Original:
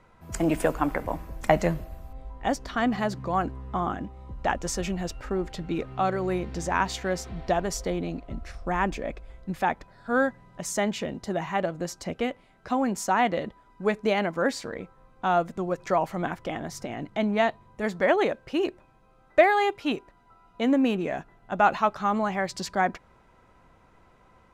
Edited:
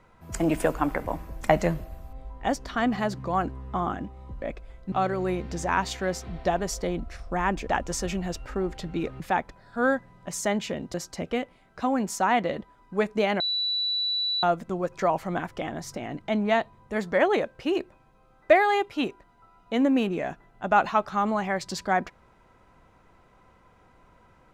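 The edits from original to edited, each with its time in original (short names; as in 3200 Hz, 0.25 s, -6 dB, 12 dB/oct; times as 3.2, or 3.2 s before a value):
4.42–5.95 swap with 9.02–9.52
8.02–8.34 cut
11.26–11.82 cut
14.28–15.31 bleep 3950 Hz -24 dBFS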